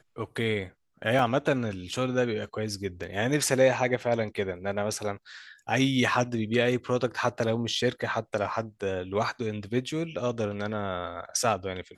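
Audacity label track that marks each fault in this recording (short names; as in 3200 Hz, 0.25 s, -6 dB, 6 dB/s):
1.190000	1.190000	gap 2.3 ms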